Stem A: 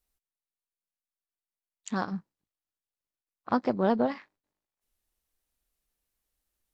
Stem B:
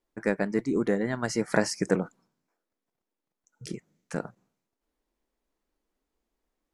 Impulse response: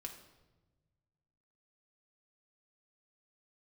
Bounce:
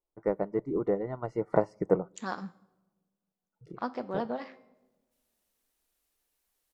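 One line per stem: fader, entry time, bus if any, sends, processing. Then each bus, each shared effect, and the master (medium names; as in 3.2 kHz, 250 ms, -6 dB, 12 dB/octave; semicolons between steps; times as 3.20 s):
-9.0 dB, 0.30 s, send -16 dB, bass shelf 210 Hz -12 dB; de-hum 263.2 Hz, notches 28; level rider gain up to 13 dB; auto duck -11 dB, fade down 1.10 s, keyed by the second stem
+2.5 dB, 0.00 s, send -20.5 dB, Savitzky-Golay filter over 65 samples; peaking EQ 230 Hz -13 dB 0.49 oct; upward expansion 1.5:1, over -43 dBFS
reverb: on, RT60 1.2 s, pre-delay 4 ms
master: none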